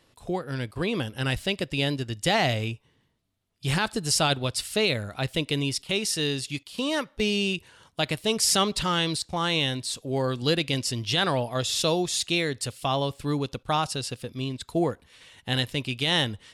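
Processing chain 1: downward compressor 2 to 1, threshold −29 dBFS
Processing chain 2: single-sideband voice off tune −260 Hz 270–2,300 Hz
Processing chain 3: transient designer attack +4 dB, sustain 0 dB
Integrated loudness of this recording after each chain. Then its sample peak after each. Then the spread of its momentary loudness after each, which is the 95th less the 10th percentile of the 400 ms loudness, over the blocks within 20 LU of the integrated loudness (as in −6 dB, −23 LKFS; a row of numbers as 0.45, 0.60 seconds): −30.5, −31.5, −25.5 LKFS; −14.5, −11.5, −8.5 dBFS; 7, 10, 9 LU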